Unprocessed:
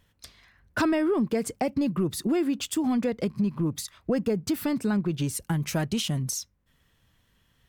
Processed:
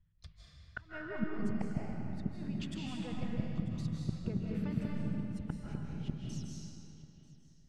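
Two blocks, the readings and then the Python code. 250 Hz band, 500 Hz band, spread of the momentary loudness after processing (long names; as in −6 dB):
−12.0 dB, −17.5 dB, 16 LU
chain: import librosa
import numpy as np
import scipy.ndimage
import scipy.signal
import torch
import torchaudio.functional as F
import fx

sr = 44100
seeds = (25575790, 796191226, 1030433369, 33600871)

p1 = fx.noise_reduce_blind(x, sr, reduce_db=8)
p2 = fx.curve_eq(p1, sr, hz=(180.0, 250.0, 1900.0), db=(0, -26, -12))
p3 = fx.transient(p2, sr, attack_db=9, sustain_db=5)
p4 = fx.gate_flip(p3, sr, shuts_db=-23.0, range_db=-28)
p5 = fx.spacing_loss(p4, sr, db_at_10k=26)
p6 = p5 + fx.echo_single(p5, sr, ms=940, db=-19.5, dry=0)
p7 = fx.rev_freeverb(p6, sr, rt60_s=2.5, hf_ratio=0.85, predelay_ms=120, drr_db=-3.5)
y = p7 * 10.0 ** (1.0 / 20.0)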